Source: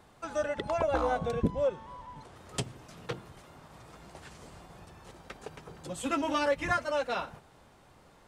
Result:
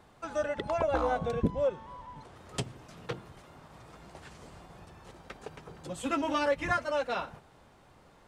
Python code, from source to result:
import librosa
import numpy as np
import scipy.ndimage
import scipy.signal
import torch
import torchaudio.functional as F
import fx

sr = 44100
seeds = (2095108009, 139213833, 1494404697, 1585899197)

y = fx.high_shelf(x, sr, hz=5800.0, db=-4.5)